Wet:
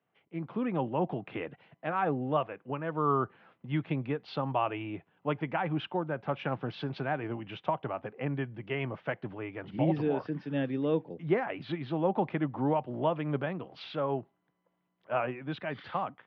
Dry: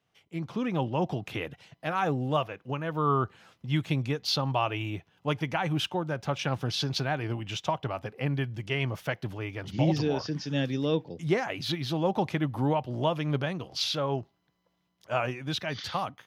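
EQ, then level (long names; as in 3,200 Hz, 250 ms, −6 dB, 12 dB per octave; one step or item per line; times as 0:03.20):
high-frequency loss of the air 310 metres
three-way crossover with the lows and the highs turned down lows −16 dB, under 150 Hz, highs −18 dB, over 3,200 Hz
0.0 dB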